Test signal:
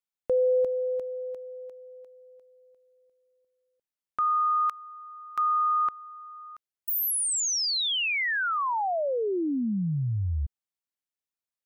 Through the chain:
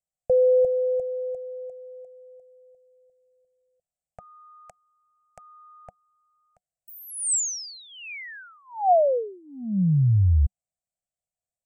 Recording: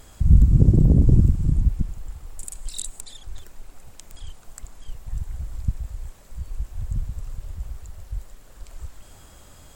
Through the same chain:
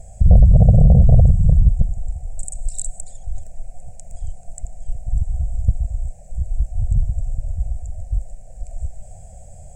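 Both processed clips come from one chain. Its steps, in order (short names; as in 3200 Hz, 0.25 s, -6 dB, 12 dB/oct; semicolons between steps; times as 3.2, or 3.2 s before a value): tone controls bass +13 dB, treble -5 dB; soft clip -1.5 dBFS; EQ curve 190 Hz 0 dB, 330 Hz -25 dB, 490 Hz +6 dB, 730 Hz +15 dB, 1100 Hz -28 dB, 1600 Hz -11 dB, 2400 Hz -5 dB, 3500 Hz -17 dB, 8000 Hz +14 dB, 12000 Hz -8 dB; gain -3 dB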